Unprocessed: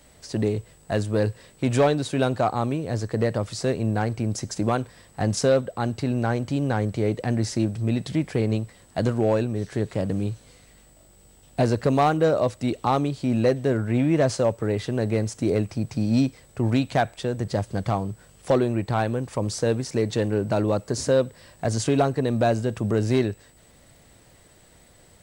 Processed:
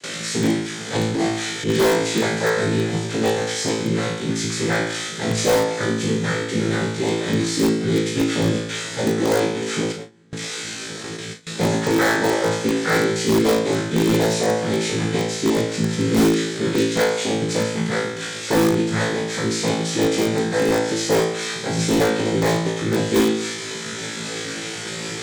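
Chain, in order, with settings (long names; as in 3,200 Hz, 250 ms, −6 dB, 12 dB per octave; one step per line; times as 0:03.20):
linear delta modulator 32 kbit/s, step −24.5 dBFS
reverb reduction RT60 1.2 s
cochlear-implant simulation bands 6
flat-topped bell 830 Hz −10 dB 1.1 octaves
on a send: flutter between parallel walls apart 3.1 metres, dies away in 0.77 s
0:09.92–0:10.32: on the sum: output level in coarse steps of 17 dB
high-pass filter 190 Hz 6 dB per octave
0:00.95–0:01.70: transient designer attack −10 dB, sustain +2 dB
four-comb reverb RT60 3 s, combs from 30 ms, DRR 19.5 dB
in parallel at −7 dB: wrap-around overflow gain 13 dB
on the sum: notch filter 2,800 Hz, Q 12
noise gate with hold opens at −21 dBFS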